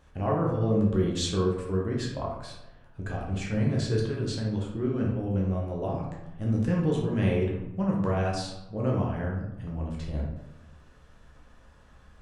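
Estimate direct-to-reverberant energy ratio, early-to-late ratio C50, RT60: -3.0 dB, 3.0 dB, 0.95 s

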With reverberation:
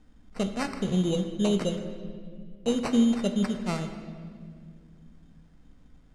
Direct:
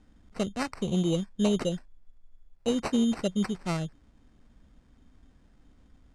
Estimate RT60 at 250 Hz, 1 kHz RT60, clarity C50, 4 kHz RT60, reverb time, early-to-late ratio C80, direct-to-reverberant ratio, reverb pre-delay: 3.3 s, 1.8 s, 8.5 dB, 1.6 s, 2.1 s, 9.5 dB, 6.0 dB, 4 ms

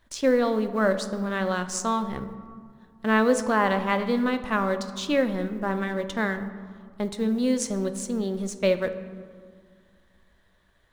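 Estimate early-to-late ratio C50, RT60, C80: 11.0 dB, 2.1 s, 12.5 dB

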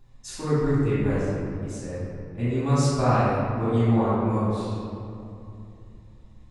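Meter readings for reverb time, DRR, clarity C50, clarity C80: 2.8 s, -13.5 dB, -4.5 dB, -1.5 dB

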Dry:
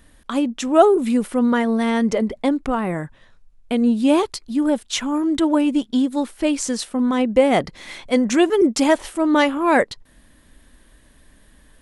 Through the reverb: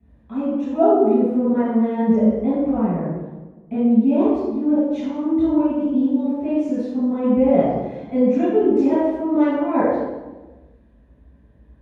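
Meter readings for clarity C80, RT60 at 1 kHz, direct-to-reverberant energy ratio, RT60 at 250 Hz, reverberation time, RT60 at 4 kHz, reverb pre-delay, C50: -0.5 dB, 1.1 s, -18.5 dB, 1.5 s, 1.2 s, no reading, 3 ms, -4.0 dB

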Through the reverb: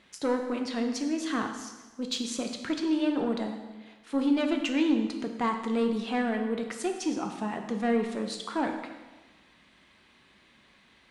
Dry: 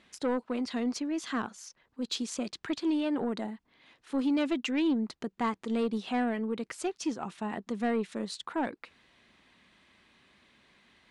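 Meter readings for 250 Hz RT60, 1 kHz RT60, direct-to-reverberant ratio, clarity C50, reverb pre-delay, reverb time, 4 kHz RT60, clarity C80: 1.2 s, 1.2 s, 4.0 dB, 6.5 dB, 4 ms, 1.2 s, 1.1 s, 8.5 dB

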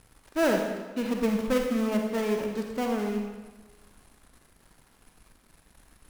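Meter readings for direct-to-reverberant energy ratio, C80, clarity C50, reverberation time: 2.0 dB, 5.0 dB, 3.0 dB, 1.3 s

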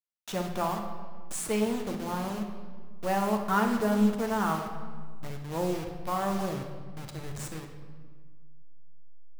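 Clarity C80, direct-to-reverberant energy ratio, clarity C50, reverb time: 8.0 dB, 2.5 dB, 5.5 dB, 1.6 s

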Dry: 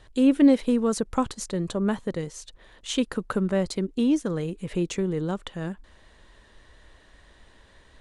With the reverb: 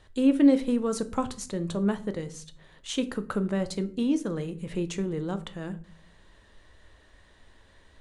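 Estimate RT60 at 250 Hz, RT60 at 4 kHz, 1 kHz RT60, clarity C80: 0.85 s, 0.30 s, 0.40 s, 22.0 dB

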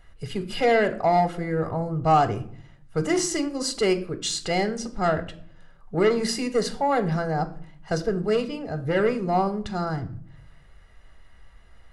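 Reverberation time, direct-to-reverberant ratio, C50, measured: 0.55 s, 10.0 dB, 15.5 dB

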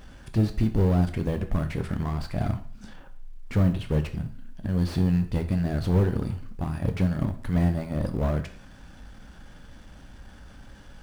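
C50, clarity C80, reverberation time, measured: 12.5 dB, 16.0 dB, 0.50 s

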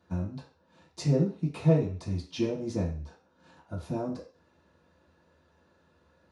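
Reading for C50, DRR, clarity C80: 8.0 dB, -10.0 dB, 12.5 dB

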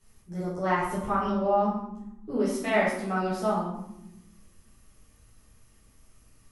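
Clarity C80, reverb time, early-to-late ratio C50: 5.5 dB, no single decay rate, 2.0 dB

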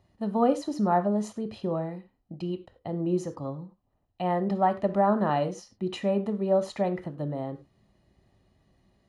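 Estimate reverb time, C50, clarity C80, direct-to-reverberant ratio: no single decay rate, 15.5 dB, 20.5 dB, 11.0 dB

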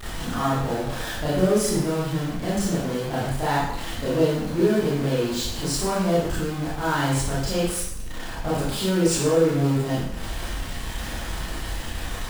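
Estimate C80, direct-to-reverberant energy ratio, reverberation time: 3.5 dB, -9.0 dB, 0.80 s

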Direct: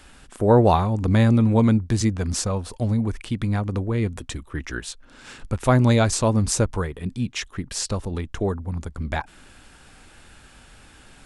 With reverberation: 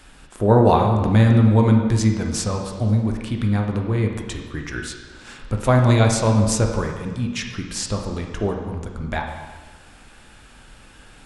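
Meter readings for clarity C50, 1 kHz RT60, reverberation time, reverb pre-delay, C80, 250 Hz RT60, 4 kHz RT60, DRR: 4.5 dB, 1.4 s, 1.4 s, 6 ms, 6.5 dB, 1.5 s, 1.3 s, 2.0 dB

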